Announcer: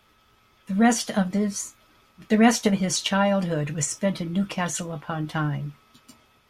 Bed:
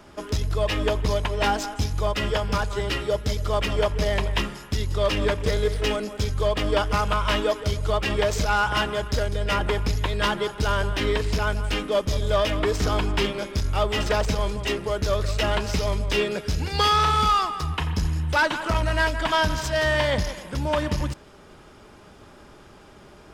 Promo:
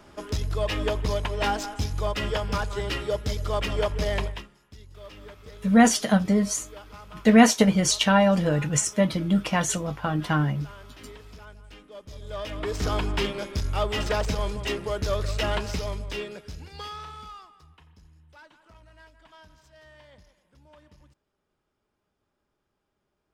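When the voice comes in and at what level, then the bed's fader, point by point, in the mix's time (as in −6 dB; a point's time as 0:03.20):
4.95 s, +2.5 dB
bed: 0:04.25 −3 dB
0:04.48 −22 dB
0:11.92 −22 dB
0:12.87 −3 dB
0:15.56 −3 dB
0:17.96 −30.5 dB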